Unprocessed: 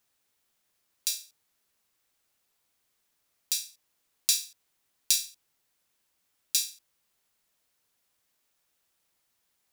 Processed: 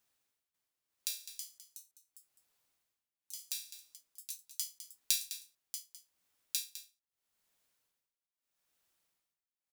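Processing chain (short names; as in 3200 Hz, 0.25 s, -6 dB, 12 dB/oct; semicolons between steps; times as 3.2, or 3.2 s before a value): dynamic EQ 6400 Hz, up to -6 dB, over -39 dBFS, Q 0.92; tremolo 0.79 Hz, depth 98%; echoes that change speed 0.544 s, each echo +4 st, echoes 3, each echo -6 dB; on a send: echo 0.206 s -12.5 dB; on the sum: gain -3.5 dB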